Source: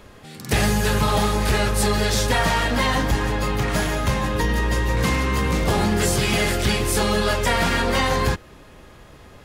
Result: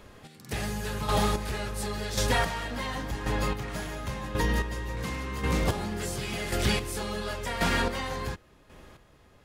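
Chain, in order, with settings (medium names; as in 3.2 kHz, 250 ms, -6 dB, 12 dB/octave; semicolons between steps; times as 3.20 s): square tremolo 0.92 Hz, depth 60%, duty 25%; trim -5 dB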